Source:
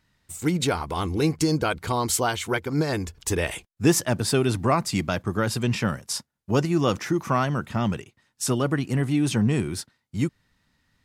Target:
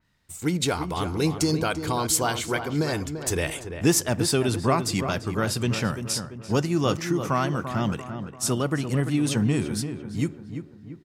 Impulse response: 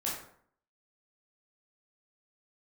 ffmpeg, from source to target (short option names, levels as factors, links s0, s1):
-filter_complex "[0:a]asplit=2[s0][s1];[s1]adelay=341,lowpass=f=2000:p=1,volume=0.376,asplit=2[s2][s3];[s3]adelay=341,lowpass=f=2000:p=1,volume=0.5,asplit=2[s4][s5];[s5]adelay=341,lowpass=f=2000:p=1,volume=0.5,asplit=2[s6][s7];[s7]adelay=341,lowpass=f=2000:p=1,volume=0.5,asplit=2[s8][s9];[s9]adelay=341,lowpass=f=2000:p=1,volume=0.5,asplit=2[s10][s11];[s11]adelay=341,lowpass=f=2000:p=1,volume=0.5[s12];[s0][s2][s4][s6][s8][s10][s12]amix=inputs=7:normalize=0,asplit=2[s13][s14];[1:a]atrim=start_sample=2205,lowpass=8400[s15];[s14][s15]afir=irnorm=-1:irlink=0,volume=0.0631[s16];[s13][s16]amix=inputs=2:normalize=0,adynamicequalizer=threshold=0.0126:dfrequency=3400:dqfactor=0.7:tfrequency=3400:tqfactor=0.7:attack=5:release=100:ratio=0.375:range=2:mode=boostabove:tftype=highshelf,volume=0.794"